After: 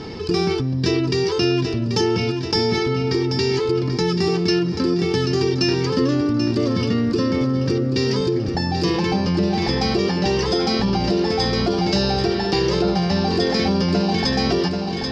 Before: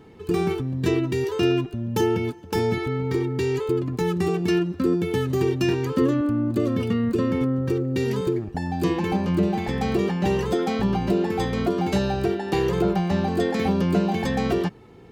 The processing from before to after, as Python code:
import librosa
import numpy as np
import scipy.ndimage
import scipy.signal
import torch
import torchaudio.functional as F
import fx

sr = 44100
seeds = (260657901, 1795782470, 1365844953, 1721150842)

y = fx.lowpass_res(x, sr, hz=5100.0, q=11.0)
y = fx.echo_feedback(y, sr, ms=785, feedback_pct=49, wet_db=-11.0)
y = fx.env_flatten(y, sr, amount_pct=50)